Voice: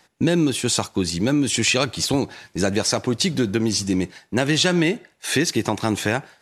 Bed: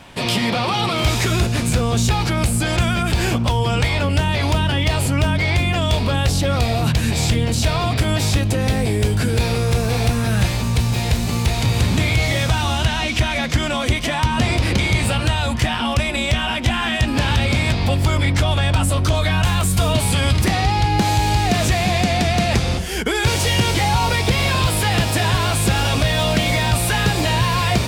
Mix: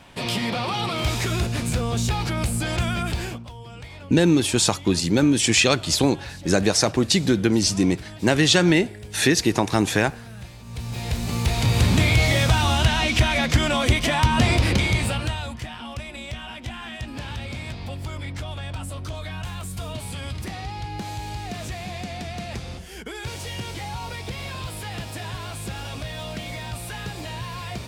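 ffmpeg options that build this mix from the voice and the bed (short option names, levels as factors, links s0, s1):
-filter_complex "[0:a]adelay=3900,volume=1.19[s0];[1:a]volume=5.62,afade=t=out:st=3.04:d=0.41:silence=0.16788,afade=t=in:st=10.64:d=1.27:silence=0.0891251,afade=t=out:st=14.51:d=1.09:silence=0.188365[s1];[s0][s1]amix=inputs=2:normalize=0"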